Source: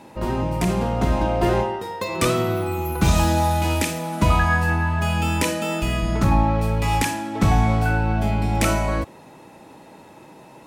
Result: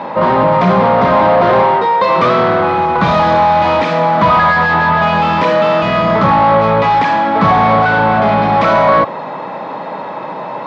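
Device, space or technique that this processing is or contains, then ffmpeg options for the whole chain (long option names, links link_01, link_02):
overdrive pedal into a guitar cabinet: -filter_complex "[0:a]asplit=2[link_01][link_02];[link_02]highpass=frequency=720:poles=1,volume=29dB,asoftclip=type=tanh:threshold=-6.5dB[link_03];[link_01][link_03]amix=inputs=2:normalize=0,lowpass=frequency=1600:poles=1,volume=-6dB,highpass=91,equalizer=frequency=130:width_type=q:width=4:gain=4,equalizer=frequency=180:width_type=q:width=4:gain=6,equalizer=frequency=340:width_type=q:width=4:gain=-6,equalizer=frequency=580:width_type=q:width=4:gain=5,equalizer=frequency=1100:width_type=q:width=4:gain=7,equalizer=frequency=2700:width_type=q:width=4:gain=-6,lowpass=frequency=4200:width=0.5412,lowpass=frequency=4200:width=1.3066,lowshelf=frequency=110:gain=-5.5,volume=2.5dB"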